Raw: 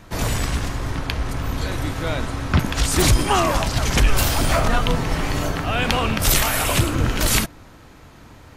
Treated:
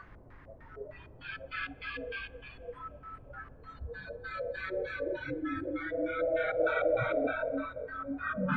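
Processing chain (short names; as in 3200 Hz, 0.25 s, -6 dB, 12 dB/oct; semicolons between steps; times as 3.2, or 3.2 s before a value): Paulstretch 4.9×, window 0.50 s, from 0.73; LFO low-pass square 3.3 Hz 580–1800 Hz; in parallel at -11.5 dB: soft clip -22 dBFS, distortion -12 dB; on the sum: bit-crush 10-bit; spectral noise reduction 24 dB; on a send at -22 dB: reverb RT60 3.1 s, pre-delay 58 ms; on the sum: gain -6 dB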